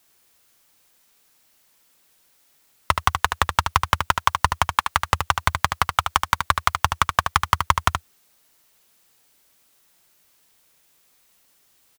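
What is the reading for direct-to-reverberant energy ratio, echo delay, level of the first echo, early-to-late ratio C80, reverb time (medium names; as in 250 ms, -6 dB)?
no reverb, 75 ms, -6.5 dB, no reverb, no reverb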